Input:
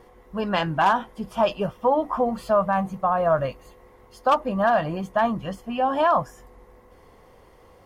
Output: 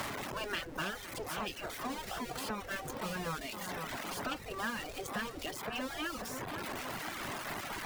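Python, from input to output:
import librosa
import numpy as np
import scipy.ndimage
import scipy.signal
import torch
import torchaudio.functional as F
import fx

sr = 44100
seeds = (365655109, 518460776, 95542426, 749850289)

y = x + 0.5 * 10.0 ** (-27.0 / 20.0) * np.sign(x)
y = fx.spec_gate(y, sr, threshold_db=-10, keep='weak')
y = fx.dereverb_blind(y, sr, rt60_s=1.1)
y = fx.echo_wet_lowpass(y, sr, ms=513, feedback_pct=56, hz=1700.0, wet_db=-13.0)
y = fx.dynamic_eq(y, sr, hz=1000.0, q=1.6, threshold_db=-41.0, ratio=4.0, max_db=-6)
y = fx.band_squash(y, sr, depth_pct=100)
y = y * 10.0 ** (-6.5 / 20.0)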